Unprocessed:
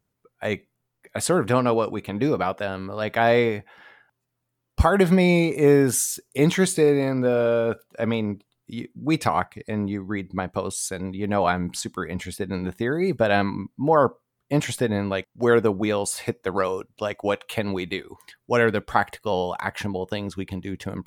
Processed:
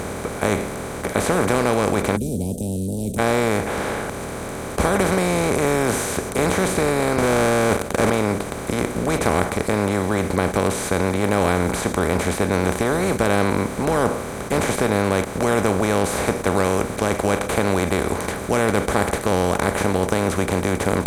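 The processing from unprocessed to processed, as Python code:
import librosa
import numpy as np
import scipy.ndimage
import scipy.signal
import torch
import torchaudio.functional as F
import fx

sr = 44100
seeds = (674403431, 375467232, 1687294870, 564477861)

y = fx.cheby1_bandstop(x, sr, low_hz=230.0, high_hz=8700.0, order=5, at=(2.15, 3.18), fade=0.02)
y = fx.leveller(y, sr, passes=3, at=(7.18, 8.1))
y = fx.bin_compress(y, sr, power=0.2)
y = F.gain(torch.from_numpy(y), -9.0).numpy()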